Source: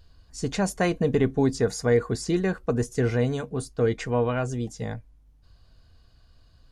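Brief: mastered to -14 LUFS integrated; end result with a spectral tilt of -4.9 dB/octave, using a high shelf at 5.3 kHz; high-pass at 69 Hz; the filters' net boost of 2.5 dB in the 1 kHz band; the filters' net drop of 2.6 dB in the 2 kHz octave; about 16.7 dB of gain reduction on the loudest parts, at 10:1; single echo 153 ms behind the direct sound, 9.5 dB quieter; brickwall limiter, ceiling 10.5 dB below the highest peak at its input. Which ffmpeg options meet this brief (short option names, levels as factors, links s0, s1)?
-af "highpass=69,equalizer=f=1000:t=o:g=4.5,equalizer=f=2000:t=o:g=-5.5,highshelf=f=5300:g=4,acompressor=threshold=0.02:ratio=10,alimiter=level_in=2.82:limit=0.0631:level=0:latency=1,volume=0.355,aecho=1:1:153:0.335,volume=25.1"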